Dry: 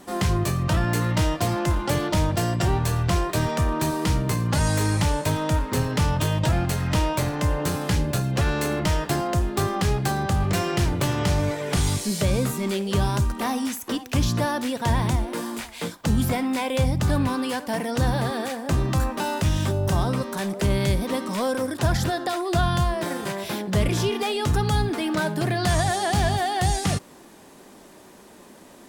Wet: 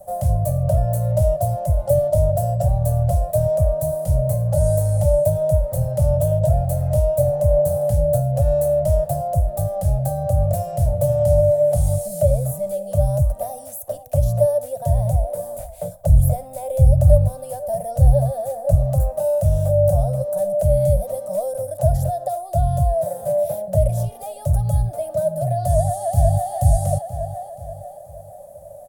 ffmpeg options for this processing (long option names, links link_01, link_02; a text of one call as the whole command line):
ffmpeg -i in.wav -filter_complex "[0:a]asettb=1/sr,asplit=3[link_01][link_02][link_03];[link_01]atrim=end=15.374[link_04];[link_02]atrim=start=15.37:end=18.75,asetpts=PTS-STARTPTS,afade=type=in:duration=0.004:curve=qsin,afade=type=out:start_time=3.376:duration=0.004:curve=qsin,lowshelf=frequency=88:gain=10.5[link_05];[link_03]atrim=start=18.746[link_06];[link_04][link_05]acrossfade=duration=0.004:curve1=hsin:curve2=qsin[link_07];[link_07][link_06]acrossfade=duration=0.004:curve1=qsin:curve2=hsin,asplit=2[link_08][link_09];[link_09]afade=type=in:start_time=25.68:duration=0.01,afade=type=out:start_time=26.53:duration=0.01,aecho=0:1:480|960|1440|1920|2400:0.473151|0.212918|0.0958131|0.0431159|0.0194022[link_10];[link_08][link_10]amix=inputs=2:normalize=0,acrossover=split=170|3000[link_11][link_12][link_13];[link_12]acompressor=threshold=-28dB:ratio=6[link_14];[link_11][link_14][link_13]amix=inputs=3:normalize=0,firequalizer=gain_entry='entry(140,0);entry(240,-27);entry(400,-27);entry(580,15);entry(970,-21);entry(2000,-27);entry(3100,-27);entry(5100,-22);entry(10000,-2)':delay=0.05:min_phase=1,volume=5.5dB" out.wav